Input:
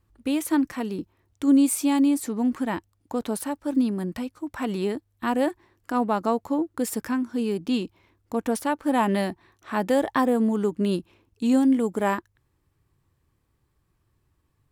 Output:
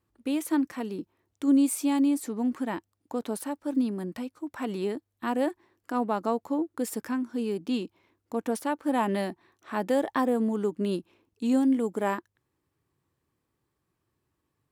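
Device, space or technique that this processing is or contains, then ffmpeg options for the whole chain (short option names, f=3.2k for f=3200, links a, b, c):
filter by subtraction: -filter_complex "[0:a]asplit=2[a][b];[b]lowpass=300,volume=-1[c];[a][c]amix=inputs=2:normalize=0,volume=-5dB"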